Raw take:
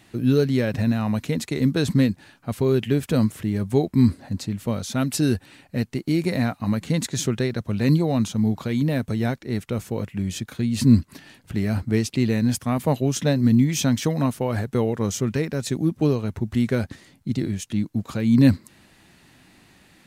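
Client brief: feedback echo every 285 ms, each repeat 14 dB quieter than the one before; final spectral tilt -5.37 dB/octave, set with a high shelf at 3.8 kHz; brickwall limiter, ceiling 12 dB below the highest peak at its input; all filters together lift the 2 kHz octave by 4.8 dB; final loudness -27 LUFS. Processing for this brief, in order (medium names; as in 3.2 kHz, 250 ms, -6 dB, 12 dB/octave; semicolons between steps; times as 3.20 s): peaking EQ 2 kHz +5 dB; treble shelf 3.8 kHz +3.5 dB; peak limiter -16 dBFS; feedback delay 285 ms, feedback 20%, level -14 dB; trim -0.5 dB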